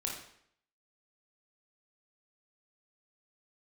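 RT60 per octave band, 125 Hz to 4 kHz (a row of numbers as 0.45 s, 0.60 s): 0.65 s, 0.70 s, 0.65 s, 0.65 s, 0.65 s, 0.60 s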